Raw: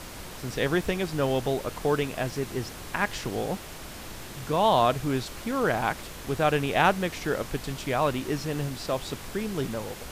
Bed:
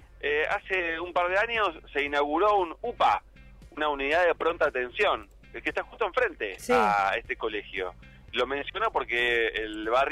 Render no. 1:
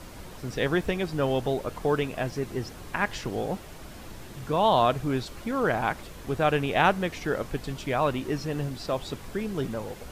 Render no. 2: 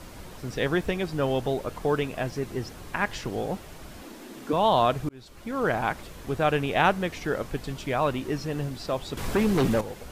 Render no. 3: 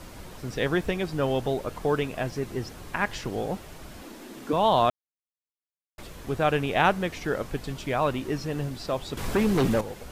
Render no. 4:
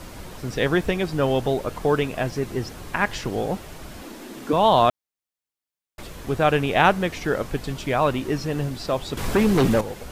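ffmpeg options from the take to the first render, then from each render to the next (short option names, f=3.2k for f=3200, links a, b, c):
-af "afftdn=nr=7:nf=-41"
-filter_complex "[0:a]asettb=1/sr,asplit=3[a][b][c];[a]atrim=end=4.024[d];[b]atrim=start=4.02:end=4.53,asetpts=PTS-STARTPTS,afade=t=in:d=0.004:c=qsin,afade=t=out:st=0.506:d=0.004:c=qsin,lowshelf=f=170:t=q:w=3:g=-14[e];[c]atrim=start=4.526[f];[d][e]acrossfade=d=0.004:c1=hsin:c2=qsin[g];[g][f]acrossfade=d=0.004:c1=qsin:c2=hsin,asettb=1/sr,asplit=3[h][i][j];[h]atrim=end=9.174[k];[i]atrim=start=9.17:end=9.81,asetpts=PTS-STARTPTS,afade=t=in:d=0.004:c=qsin,afade=t=out:st=0.636:d=0.004:c=qsin,aeval=exprs='0.133*sin(PI/2*2.24*val(0)/0.133)':c=same[l];[j]atrim=start=9.806[m];[k][l]acrossfade=d=0.004:c1=hsin:c2=qsin[n];[n][m]acrossfade=d=0.004:c1=qsin:c2=hsin,asplit=2[o][p];[o]atrim=end=5.09,asetpts=PTS-STARTPTS,afade=t=out:st=5.086:d=0.004:c=hsin[q];[p]atrim=start=5.09,asetpts=PTS-STARTPTS,afade=t=in:d=0.58[r];[q][r]concat=n=2:v=0:a=1"
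-filter_complex "[0:a]asplit=3[a][b][c];[a]atrim=end=4.9,asetpts=PTS-STARTPTS,afade=t=out:st=4.896:d=0.004:c=hsin[d];[b]atrim=start=4.9:end=5.98,asetpts=PTS-STARTPTS,volume=0[e];[c]atrim=start=5.98,asetpts=PTS-STARTPTS,afade=t=in:d=0.004:c=hsin[f];[d][e][f]concat=n=3:v=0:a=1"
-af "volume=4.5dB"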